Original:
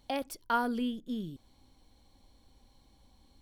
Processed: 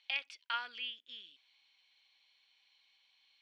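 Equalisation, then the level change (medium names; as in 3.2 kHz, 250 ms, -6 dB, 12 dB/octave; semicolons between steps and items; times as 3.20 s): ladder band-pass 2.9 kHz, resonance 55%; distance through air 120 m; +15.5 dB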